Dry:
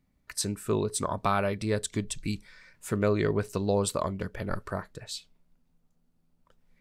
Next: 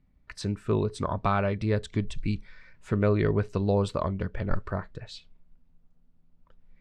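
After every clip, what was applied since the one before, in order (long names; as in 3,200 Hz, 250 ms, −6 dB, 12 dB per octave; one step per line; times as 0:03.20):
low-pass filter 3,500 Hz 12 dB per octave
low-shelf EQ 100 Hz +11 dB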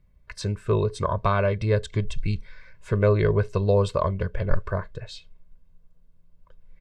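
comb filter 1.9 ms, depth 67%
level +2 dB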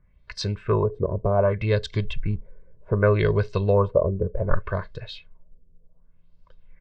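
auto-filter low-pass sine 0.66 Hz 390–4,900 Hz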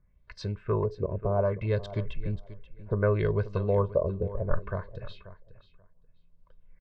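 high-shelf EQ 2,700 Hz −11 dB
repeating echo 534 ms, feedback 16%, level −15.5 dB
level −5.5 dB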